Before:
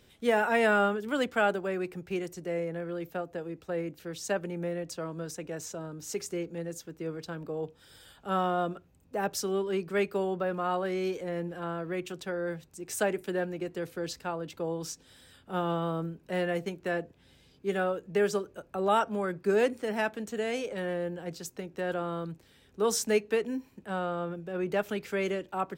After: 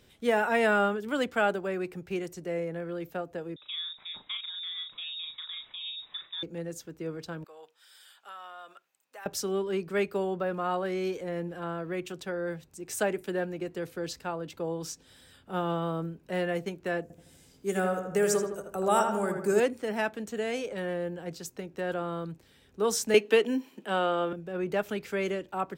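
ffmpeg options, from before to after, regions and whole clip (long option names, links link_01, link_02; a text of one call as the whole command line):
ffmpeg -i in.wav -filter_complex "[0:a]asettb=1/sr,asplit=3[link_01][link_02][link_03];[link_01]atrim=end=3.564[link_04];[link_02]atrim=start=3.56:end=6.43,asetpts=PTS-STARTPTS,afade=type=in:duration=0.004:curve=qsin,afade=type=out:start_time=2.866:duration=0.004:curve=qsin,acompressor=threshold=-38dB:ratio=2:attack=3.2:release=140:knee=1:detection=peak,asplit=2[link_05][link_06];[link_06]adelay=38,volume=-4dB[link_07];[link_05][link_07]amix=inputs=2:normalize=0,atrim=end_sample=126567,lowpass=frequency=3300:width_type=q:width=0.5098,lowpass=frequency=3300:width_type=q:width=0.6013,lowpass=frequency=3300:width_type=q:width=0.9,lowpass=frequency=3300:width_type=q:width=2.563,afreqshift=-3900[link_08];[link_03]atrim=start=6.426[link_09];[link_04][link_08]acrossfade=duration=0.004:curve1=hsin:curve2=qsin[link_10];[link_10][link_09]acrossfade=duration=0.004:curve1=qsin:curve2=hsin,asettb=1/sr,asplit=3[link_11][link_12][link_13];[link_11]atrim=end=7.444[link_14];[link_12]atrim=start=7.44:end=9.26,asetpts=PTS-STARTPTS,afade=type=in:duration=0.004:curve=qsin,afade=type=out:start_time=1.816:duration=0.004:curve=qsin,highpass=1200,acompressor=threshold=-42dB:ratio=4:attack=3.2:release=140:knee=1:detection=peak[link_15];[link_13]atrim=start=9.256[link_16];[link_14][link_15]acrossfade=duration=0.004:curve1=hsin:curve2=qsin[link_17];[link_17][link_16]acrossfade=duration=0.004:curve1=qsin:curve2=hsin,asettb=1/sr,asplit=3[link_18][link_19][link_20];[link_18]atrim=end=17.024[link_21];[link_19]atrim=start=17.02:end=19.6,asetpts=PTS-STARTPTS,afade=type=in:duration=0.004:curve=qsin,afade=type=out:start_time=2.576:duration=0.004:curve=qsin,highshelf=frequency=5300:width_type=q:width=1.5:gain=10.5,asplit=2[link_22][link_23];[link_23]adelay=80,lowpass=frequency=2600:poles=1,volume=-4.5dB,asplit=2[link_24][link_25];[link_25]adelay=80,lowpass=frequency=2600:poles=1,volume=0.54,asplit=2[link_26][link_27];[link_27]adelay=80,lowpass=frequency=2600:poles=1,volume=0.54,asplit=2[link_28][link_29];[link_29]adelay=80,lowpass=frequency=2600:poles=1,volume=0.54,asplit=2[link_30][link_31];[link_31]adelay=80,lowpass=frequency=2600:poles=1,volume=0.54,asplit=2[link_32][link_33];[link_33]adelay=80,lowpass=frequency=2600:poles=1,volume=0.54,asplit=2[link_34][link_35];[link_35]adelay=80,lowpass=frequency=2600:poles=1,volume=0.54[link_36];[link_22][link_24][link_26][link_28][link_30][link_32][link_34][link_36]amix=inputs=8:normalize=0,atrim=end_sample=113778[link_37];[link_20]atrim=start=19.596[link_38];[link_21][link_37]acrossfade=duration=0.004:curve1=hsin:curve2=qsin[link_39];[link_39][link_38]acrossfade=duration=0.004:curve1=qsin:curve2=hsin,asettb=1/sr,asplit=3[link_40][link_41][link_42];[link_40]atrim=end=23.144[link_43];[link_41]atrim=start=23.14:end=24.33,asetpts=PTS-STARTPTS,afade=type=in:duration=0.004:curve=qsin,afade=type=out:start_time=1.186:duration=0.004:curve=qsin,highpass=frequency=220:width=0.5412,highpass=frequency=220:width=1.3066,equalizer=frequency=3100:width_type=o:width=0.3:gain=9.5,acontrast=39[link_44];[link_42]atrim=start=24.326[link_45];[link_43][link_44]acrossfade=duration=0.004:curve1=hsin:curve2=qsin[link_46];[link_46][link_45]acrossfade=duration=0.004:curve1=qsin:curve2=hsin" out.wav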